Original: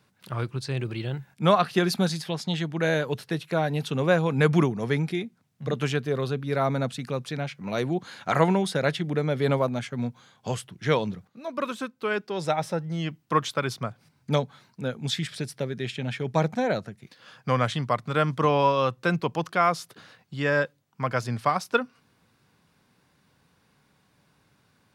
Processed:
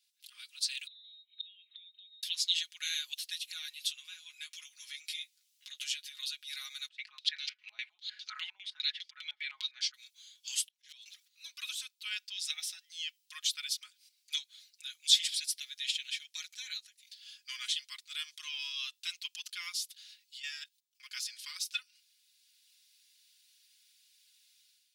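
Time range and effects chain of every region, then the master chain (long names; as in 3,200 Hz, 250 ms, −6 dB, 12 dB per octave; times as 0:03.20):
0:00.87–0:02.23: downward compressor 5 to 1, threshold −32 dBFS + voice inversion scrambler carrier 3,900 Hz + gate with flip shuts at −33 dBFS, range −29 dB
0:03.70–0:06.19: downward compressor 5 to 1, threshold −30 dBFS + double-tracking delay 14 ms −5.5 dB
0:06.88–0:09.94: comb filter 4.6 ms, depth 33% + low-pass on a step sequencer 9.9 Hz 790–4,900 Hz
0:10.61–0:11.06: volume swells 575 ms + hard clipping −33.5 dBFS
0:20.37–0:21.10: high-pass filter 1,100 Hz 6 dB per octave + output level in coarse steps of 16 dB
whole clip: comb filter 4.8 ms, depth 77%; automatic gain control gain up to 10 dB; inverse Chebyshev high-pass filter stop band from 530 Hz, stop band 80 dB; level −4 dB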